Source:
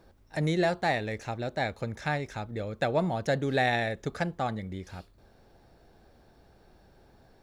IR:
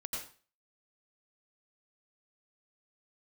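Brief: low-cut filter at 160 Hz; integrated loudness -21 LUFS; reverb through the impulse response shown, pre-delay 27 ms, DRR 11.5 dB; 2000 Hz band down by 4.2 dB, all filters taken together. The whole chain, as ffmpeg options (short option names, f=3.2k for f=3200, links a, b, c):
-filter_complex "[0:a]highpass=160,equalizer=f=2k:t=o:g=-5,asplit=2[a][b];[1:a]atrim=start_sample=2205,adelay=27[c];[b][c]afir=irnorm=-1:irlink=0,volume=-12dB[d];[a][d]amix=inputs=2:normalize=0,volume=10.5dB"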